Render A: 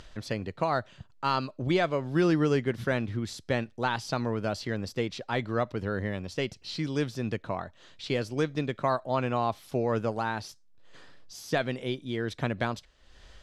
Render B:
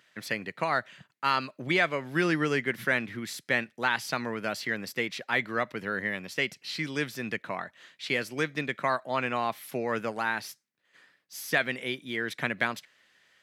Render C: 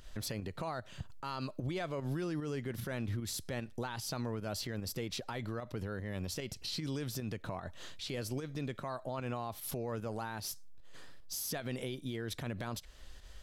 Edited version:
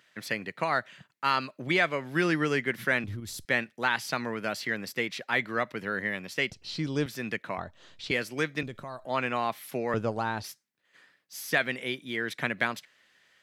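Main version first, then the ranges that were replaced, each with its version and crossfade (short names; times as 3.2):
B
3.04–3.45 from C
6.5–7.06 from A
7.58–8.11 from A
8.63–9.05 from C
9.94–10.44 from A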